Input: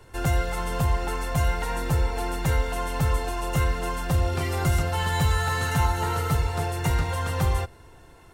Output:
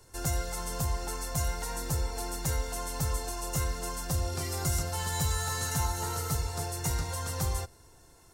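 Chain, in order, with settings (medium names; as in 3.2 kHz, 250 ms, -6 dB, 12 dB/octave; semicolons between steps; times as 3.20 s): resonant high shelf 4 kHz +10 dB, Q 1.5; trim -8 dB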